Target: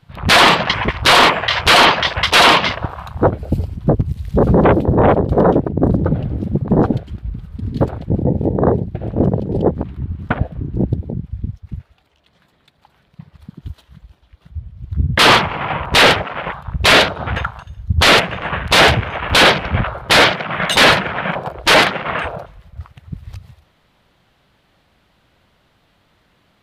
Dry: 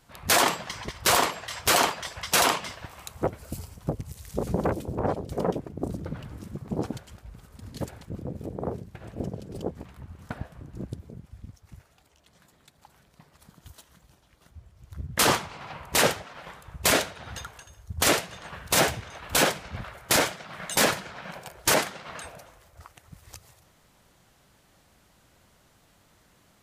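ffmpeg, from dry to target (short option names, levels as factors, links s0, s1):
-af "apsyclip=16.8,afwtdn=0.126,highshelf=f=5000:t=q:w=1.5:g=-10,volume=0.562"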